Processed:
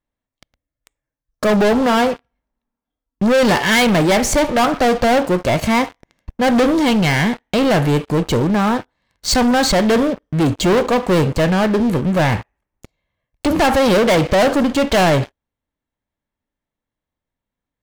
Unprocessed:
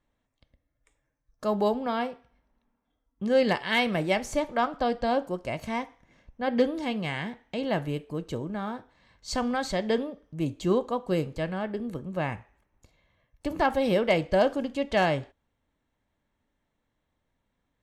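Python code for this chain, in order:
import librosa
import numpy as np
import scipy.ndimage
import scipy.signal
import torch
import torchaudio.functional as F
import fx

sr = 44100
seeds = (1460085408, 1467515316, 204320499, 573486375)

y = fx.leveller(x, sr, passes=5)
y = F.gain(torch.from_numpy(y), 2.5).numpy()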